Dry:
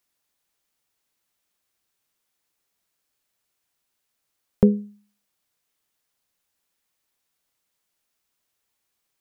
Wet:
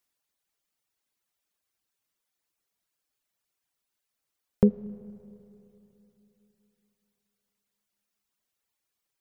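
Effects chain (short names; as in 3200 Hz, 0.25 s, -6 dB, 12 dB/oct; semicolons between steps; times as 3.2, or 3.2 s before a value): reverb removal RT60 1.1 s; Schroeder reverb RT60 3.3 s, combs from 26 ms, DRR 17 dB; gain -3.5 dB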